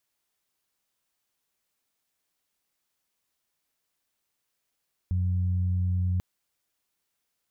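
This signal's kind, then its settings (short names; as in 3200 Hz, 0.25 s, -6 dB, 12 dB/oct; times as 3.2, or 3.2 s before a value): steady additive tone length 1.09 s, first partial 91 Hz, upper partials -13 dB, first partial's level -23 dB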